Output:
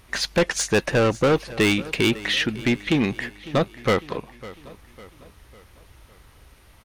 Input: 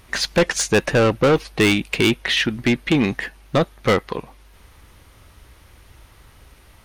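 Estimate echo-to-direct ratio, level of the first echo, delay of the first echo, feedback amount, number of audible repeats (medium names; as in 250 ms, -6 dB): -17.0 dB, -18.0 dB, 552 ms, 48%, 3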